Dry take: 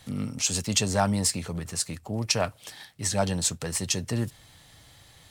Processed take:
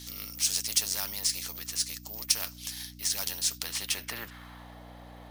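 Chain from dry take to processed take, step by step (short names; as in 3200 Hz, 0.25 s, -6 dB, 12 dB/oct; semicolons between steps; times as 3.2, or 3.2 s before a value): dynamic EQ 5400 Hz, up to +6 dB, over -41 dBFS, Q 2.1; careless resampling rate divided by 3×, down filtered, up zero stuff; band-pass sweep 5600 Hz -> 700 Hz, 3.46–4.79; hum 60 Hz, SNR 22 dB; spectral compressor 2:1; gain -3 dB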